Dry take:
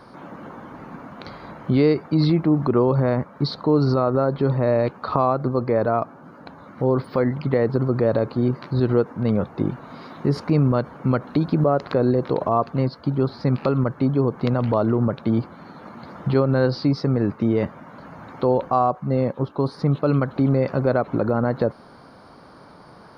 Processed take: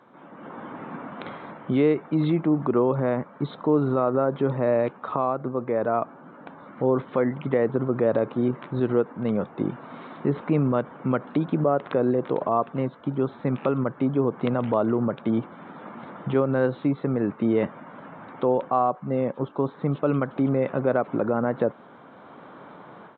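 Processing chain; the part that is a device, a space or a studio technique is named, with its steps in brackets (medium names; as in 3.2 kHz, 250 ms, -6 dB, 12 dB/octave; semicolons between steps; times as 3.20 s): Bluetooth headset (high-pass 170 Hz 12 dB/octave; level rider; resampled via 8 kHz; trim -9 dB; SBC 64 kbps 16 kHz)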